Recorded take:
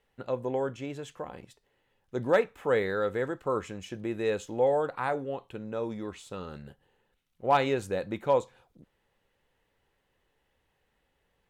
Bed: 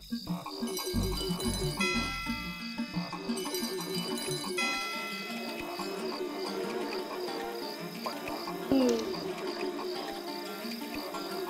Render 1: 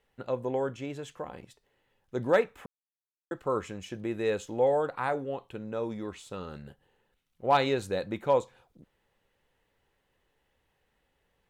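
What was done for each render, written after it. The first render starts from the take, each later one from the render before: 2.66–3.31 s: mute; 7.51–8.04 s: peaking EQ 4 kHz +8 dB 0.23 oct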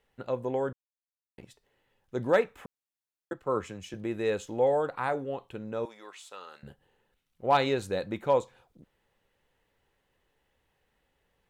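0.73–1.38 s: mute; 3.33–3.94 s: three bands expanded up and down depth 40%; 5.85–6.63 s: high-pass 790 Hz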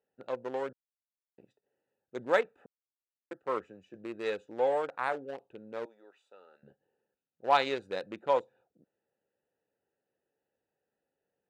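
local Wiener filter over 41 samples; frequency weighting A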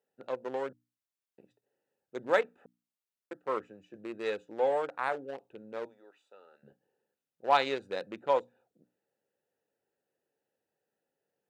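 high-pass 87 Hz; hum notches 60/120/180/240/300 Hz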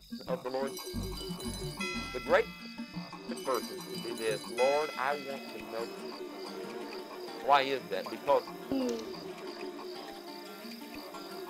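add bed -6.5 dB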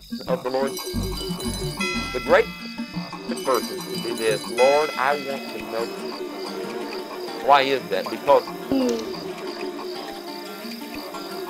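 trim +11 dB; peak limiter -3 dBFS, peak gain reduction 2.5 dB

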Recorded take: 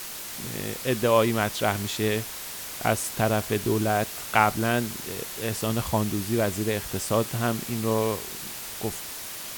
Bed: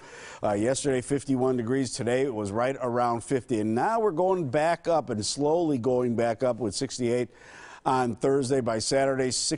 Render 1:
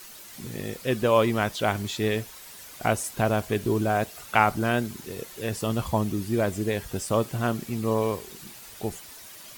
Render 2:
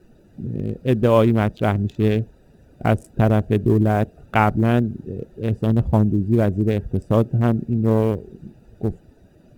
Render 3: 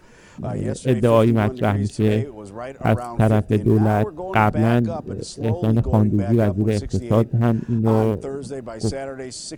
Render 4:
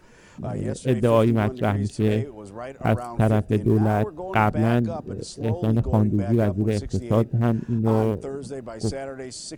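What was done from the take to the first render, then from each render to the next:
noise reduction 10 dB, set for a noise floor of -37 dBFS
local Wiener filter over 41 samples; bass shelf 470 Hz +12 dB
add bed -6 dB
trim -3 dB

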